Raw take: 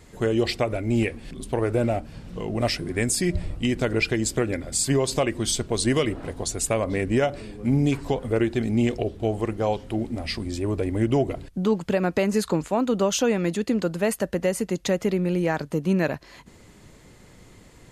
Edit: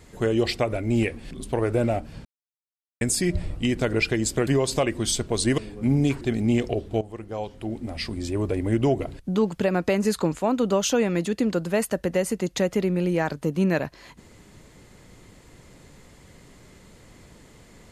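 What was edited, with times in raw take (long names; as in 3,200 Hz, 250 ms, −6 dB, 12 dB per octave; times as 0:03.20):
0:02.25–0:03.01: silence
0:04.47–0:04.87: remove
0:05.98–0:07.40: remove
0:08.03–0:08.50: remove
0:09.30–0:10.58: fade in, from −14 dB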